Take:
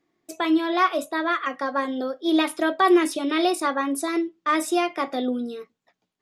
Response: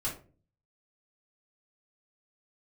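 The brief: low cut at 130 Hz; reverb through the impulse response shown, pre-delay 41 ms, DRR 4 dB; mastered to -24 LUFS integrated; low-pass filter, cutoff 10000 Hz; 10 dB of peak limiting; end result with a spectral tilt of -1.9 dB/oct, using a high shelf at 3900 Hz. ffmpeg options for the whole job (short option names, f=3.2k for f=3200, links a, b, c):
-filter_complex "[0:a]highpass=130,lowpass=10k,highshelf=f=3.9k:g=3.5,alimiter=limit=-17.5dB:level=0:latency=1,asplit=2[a][b];[1:a]atrim=start_sample=2205,adelay=41[c];[b][c]afir=irnorm=-1:irlink=0,volume=-7.5dB[d];[a][d]amix=inputs=2:normalize=0,volume=0.5dB"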